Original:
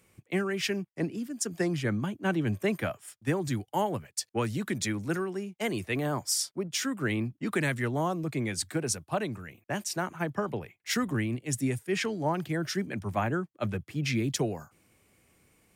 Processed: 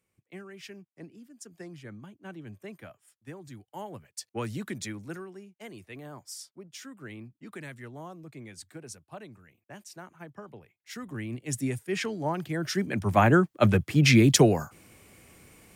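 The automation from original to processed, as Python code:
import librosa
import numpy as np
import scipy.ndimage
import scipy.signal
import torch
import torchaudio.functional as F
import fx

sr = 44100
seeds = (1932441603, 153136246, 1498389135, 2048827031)

y = fx.gain(x, sr, db=fx.line((3.53, -15.0), (4.52, -2.5), (5.61, -13.5), (10.89, -13.5), (11.45, -1.0), (12.51, -1.0), (13.35, 10.5)))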